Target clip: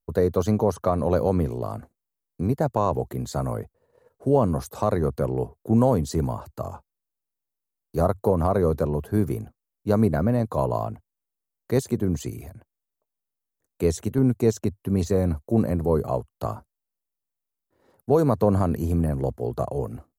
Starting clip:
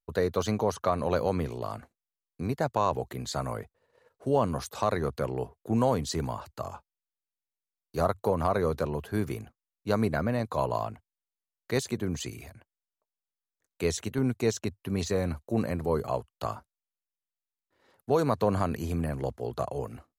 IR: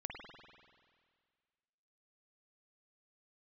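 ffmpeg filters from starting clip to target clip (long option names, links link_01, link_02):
-af "equalizer=frequency=3000:width=0.39:gain=-14,volume=8dB"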